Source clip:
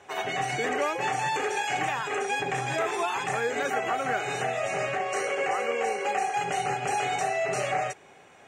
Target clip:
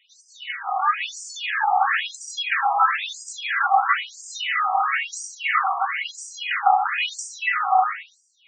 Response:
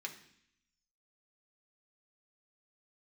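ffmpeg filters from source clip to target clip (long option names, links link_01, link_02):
-filter_complex "[0:a]dynaudnorm=framelen=330:gausssize=5:maxgain=11dB[link_01];[1:a]atrim=start_sample=2205,asetrate=23373,aresample=44100[link_02];[link_01][link_02]afir=irnorm=-1:irlink=0,afftfilt=real='re*between(b*sr/1024,920*pow(6500/920,0.5+0.5*sin(2*PI*1*pts/sr))/1.41,920*pow(6500/920,0.5+0.5*sin(2*PI*1*pts/sr))*1.41)':imag='im*between(b*sr/1024,920*pow(6500/920,0.5+0.5*sin(2*PI*1*pts/sr))/1.41,920*pow(6500/920,0.5+0.5*sin(2*PI*1*pts/sr))*1.41)':win_size=1024:overlap=0.75"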